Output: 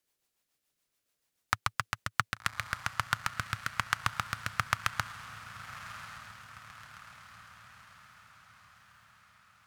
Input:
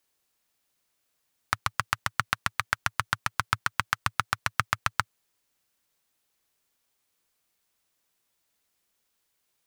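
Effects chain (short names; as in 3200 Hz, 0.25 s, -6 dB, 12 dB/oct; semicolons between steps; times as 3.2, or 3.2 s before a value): rotary speaker horn 7 Hz, later 1.2 Hz, at 1.74; diffused feedback echo 1.134 s, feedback 54%, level -12 dB; gain -1.5 dB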